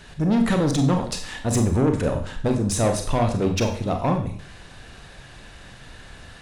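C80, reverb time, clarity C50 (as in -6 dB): 12.0 dB, 0.50 s, 8.5 dB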